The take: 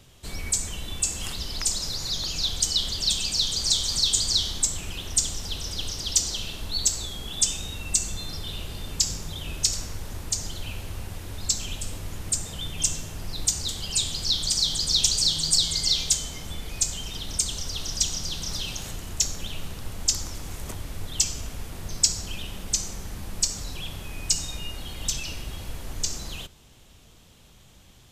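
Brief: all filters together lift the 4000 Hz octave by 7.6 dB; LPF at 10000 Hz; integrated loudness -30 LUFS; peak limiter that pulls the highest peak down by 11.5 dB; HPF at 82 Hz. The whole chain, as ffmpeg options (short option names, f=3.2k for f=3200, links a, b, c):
-af "highpass=82,lowpass=10k,equalizer=f=4k:t=o:g=9,volume=-7dB,alimiter=limit=-17.5dB:level=0:latency=1"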